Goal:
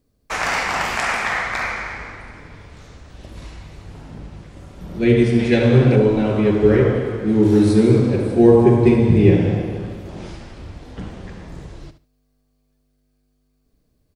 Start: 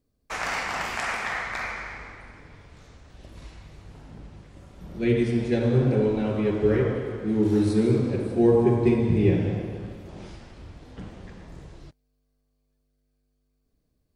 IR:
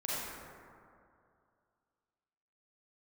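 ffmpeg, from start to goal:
-filter_complex "[0:a]asettb=1/sr,asplit=3[a][b][c];[a]atrim=end=5.394[d];[b]atrim=start=5.39:end=5.96,asetpts=PTS-STARTPTS,afade=t=in:d=0.004:c=qsin,afade=t=out:st=0.566:d=0.004:c=qsin,equalizer=f=2.5k:w=0.9:g=7.5[e];[c]atrim=start=5.956[f];[d][e]acrossfade=d=0.004:c1=hsin:c2=qsin[g];[g][f]acrossfade=d=0.004:c1=qsin:c2=hsin,asplit=2[h][i];[i]aecho=0:1:72|144:0.251|0.0477[j];[h][j]amix=inputs=2:normalize=0,volume=7.5dB"

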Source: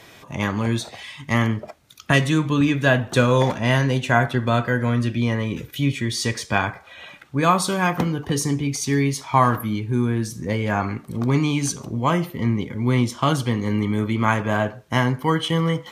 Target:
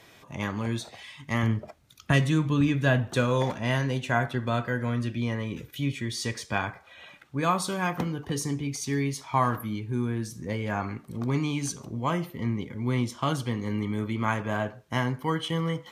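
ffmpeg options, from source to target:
-filter_complex "[0:a]asettb=1/sr,asplit=3[a][b][c];[a]atrim=end=1.434[d];[b]atrim=start=1.43:end=3.11,asetpts=PTS-STARTPTS,afade=t=in:d=0.004:c=qsin,afade=t=out:st=1.676:d=0.004:c=qsin,lowshelf=f=170:g=8.5[e];[c]atrim=start=3.106[f];[d][e]acrossfade=d=0.004:c1=hsin:c2=qsin[g];[g][f]acrossfade=d=0.004:c1=qsin:c2=hsin,volume=-7.5dB"

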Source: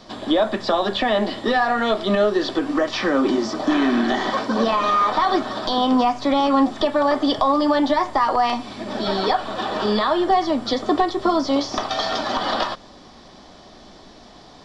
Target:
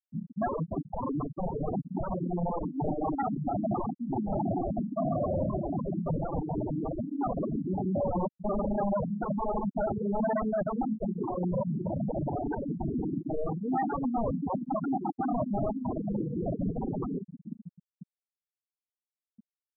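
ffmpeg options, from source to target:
-af "asoftclip=type=hard:threshold=-13dB,asuperpass=centerf=240:order=8:qfactor=0.66,areverse,acompressor=threshold=-31dB:ratio=12,areverse,aecho=1:1:391|782|1173:0.316|0.0854|0.0231,aeval=exprs='(mod(31.6*val(0)+1,2)-1)/31.6':c=same,asetrate=32667,aresample=44100,afftfilt=real='re*gte(hypot(re,im),0.0631)':imag='im*gte(hypot(re,im),0.0631)':win_size=1024:overlap=0.75,volume=8.5dB"

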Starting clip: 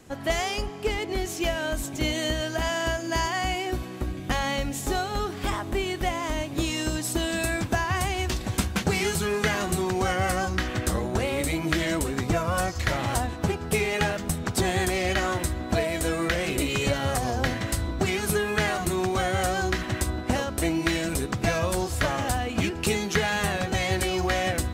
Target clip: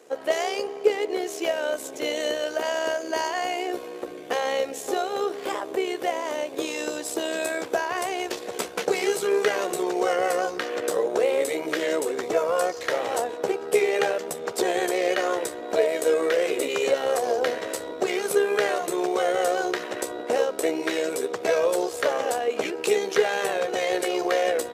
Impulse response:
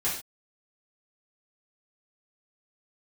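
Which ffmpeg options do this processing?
-af "asetrate=42845,aresample=44100,atempo=1.0293,tremolo=f=69:d=0.519,highpass=f=460:t=q:w=4.9"

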